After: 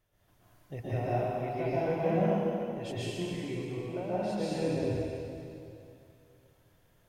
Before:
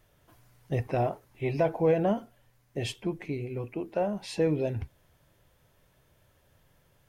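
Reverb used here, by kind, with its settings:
dense smooth reverb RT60 2.7 s, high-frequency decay 0.95×, pre-delay 110 ms, DRR −10 dB
level −12 dB

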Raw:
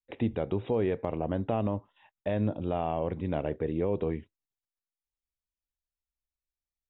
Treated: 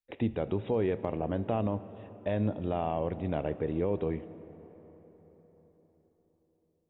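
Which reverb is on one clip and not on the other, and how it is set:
comb and all-pass reverb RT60 4.8 s, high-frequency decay 0.5×, pre-delay 20 ms, DRR 15 dB
level −1 dB

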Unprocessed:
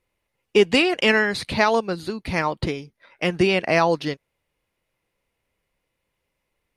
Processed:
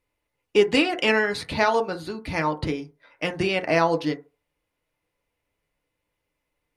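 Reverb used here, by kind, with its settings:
feedback delay network reverb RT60 0.31 s, low-frequency decay 0.8×, high-frequency decay 0.3×, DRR 5 dB
level −3.5 dB

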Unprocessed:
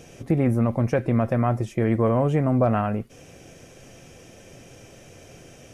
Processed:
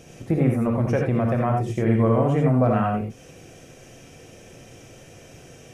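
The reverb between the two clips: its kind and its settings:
reverb whose tail is shaped and stops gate 110 ms rising, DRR 1 dB
level −1.5 dB

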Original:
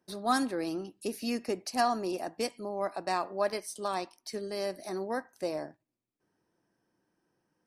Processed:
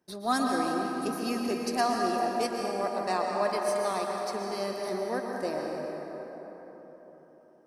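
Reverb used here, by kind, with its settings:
dense smooth reverb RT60 4.4 s, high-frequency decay 0.45×, pre-delay 105 ms, DRR −0.5 dB

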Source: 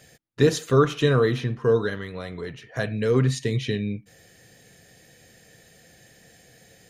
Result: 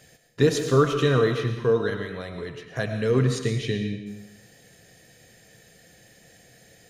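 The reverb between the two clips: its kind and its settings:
comb and all-pass reverb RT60 0.83 s, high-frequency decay 1×, pre-delay 65 ms, DRR 6.5 dB
level −1 dB

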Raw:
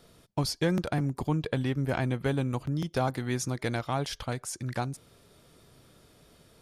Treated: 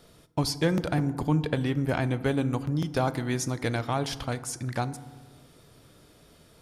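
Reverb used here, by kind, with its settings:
feedback delay network reverb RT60 1.4 s, low-frequency decay 1.35×, high-frequency decay 0.45×, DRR 13 dB
level +2 dB

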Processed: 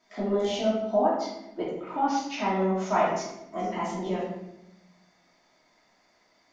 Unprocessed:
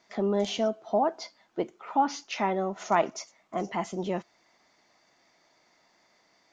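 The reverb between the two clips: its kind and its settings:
rectangular room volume 290 cubic metres, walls mixed, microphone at 2.8 metres
level −7.5 dB

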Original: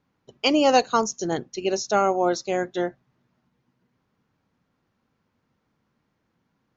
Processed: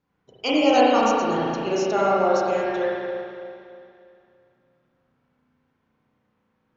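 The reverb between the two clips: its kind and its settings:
spring reverb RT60 2.5 s, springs 32/36 ms, chirp 70 ms, DRR −7.5 dB
level −6 dB

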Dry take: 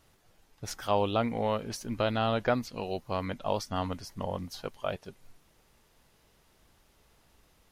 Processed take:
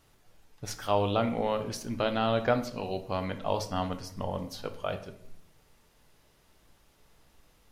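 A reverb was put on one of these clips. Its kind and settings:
rectangular room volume 150 cubic metres, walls mixed, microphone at 0.37 metres

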